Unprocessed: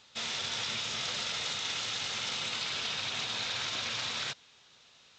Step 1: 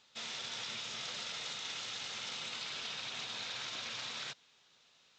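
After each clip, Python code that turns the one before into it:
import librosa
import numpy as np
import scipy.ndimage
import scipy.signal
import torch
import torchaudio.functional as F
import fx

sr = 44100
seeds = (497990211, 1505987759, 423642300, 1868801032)

y = fx.peak_eq(x, sr, hz=80.0, db=-13.5, octaves=0.58)
y = y * librosa.db_to_amplitude(-7.0)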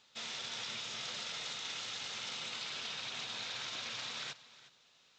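y = x + 10.0 ** (-17.5 / 20.0) * np.pad(x, (int(363 * sr / 1000.0), 0))[:len(x)]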